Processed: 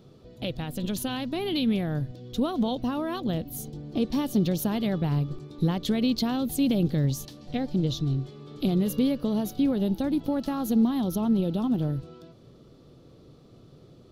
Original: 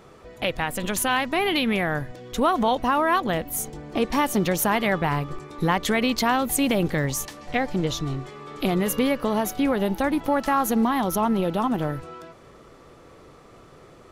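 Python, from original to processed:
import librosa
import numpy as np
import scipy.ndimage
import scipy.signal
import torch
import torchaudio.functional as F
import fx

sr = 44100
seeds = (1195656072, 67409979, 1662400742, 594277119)

y = fx.graphic_eq(x, sr, hz=(125, 250, 1000, 2000, 4000, 8000), db=(9, 5, -8, -12, 8, -8))
y = y * 10.0 ** (-6.0 / 20.0)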